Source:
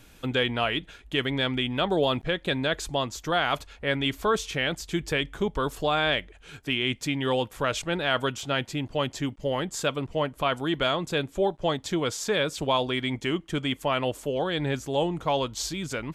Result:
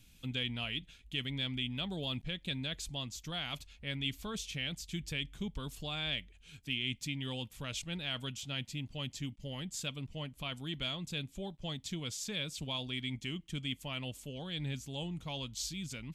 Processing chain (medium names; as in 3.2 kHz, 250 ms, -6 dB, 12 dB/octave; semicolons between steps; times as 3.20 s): high-order bell 750 Hz -13.5 dB 2.8 oct; trim -7 dB